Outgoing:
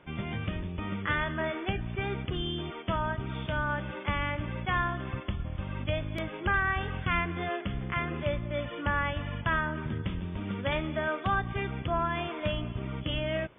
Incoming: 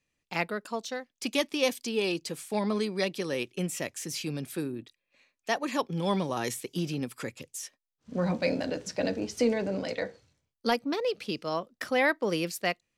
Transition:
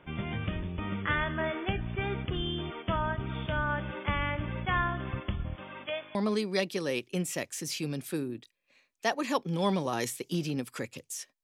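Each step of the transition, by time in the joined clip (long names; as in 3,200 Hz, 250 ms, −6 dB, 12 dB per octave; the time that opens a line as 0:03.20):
outgoing
0:05.54–0:06.15: high-pass filter 270 Hz → 790 Hz
0:06.15: continue with incoming from 0:02.59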